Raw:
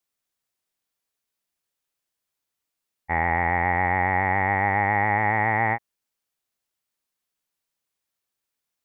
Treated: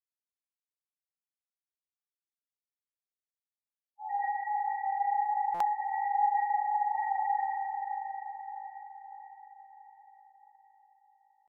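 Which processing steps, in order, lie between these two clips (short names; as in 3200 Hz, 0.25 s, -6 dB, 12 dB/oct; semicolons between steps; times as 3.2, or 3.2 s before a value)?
HPF 270 Hz 6 dB/oct; sample leveller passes 2; chorus 0.36 Hz, delay 20 ms, depth 5.3 ms; loudest bins only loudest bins 2; tempo 0.77×; on a send: diffused feedback echo 0.507 s, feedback 53%, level -5.5 dB; on the sum: spring tank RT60 2.1 s, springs 38 ms, chirp 40 ms, DRR -1 dB; stuck buffer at 5.54, samples 256, times 10; gain -8.5 dB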